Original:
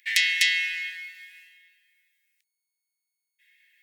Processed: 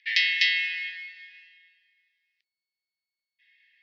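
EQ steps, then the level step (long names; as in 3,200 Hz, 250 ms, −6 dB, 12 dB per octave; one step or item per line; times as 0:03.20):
elliptic band-pass filter 1,700–5,000 Hz, stop band 40 dB
0.0 dB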